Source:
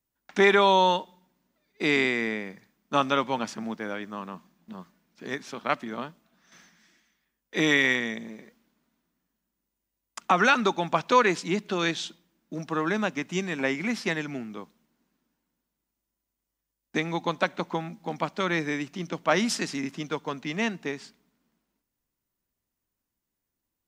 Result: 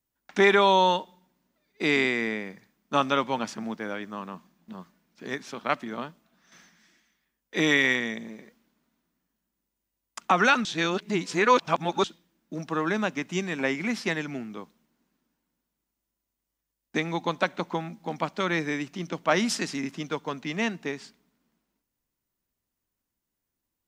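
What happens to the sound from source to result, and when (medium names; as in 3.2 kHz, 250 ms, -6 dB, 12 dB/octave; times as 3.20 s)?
10.65–12.04 s: reverse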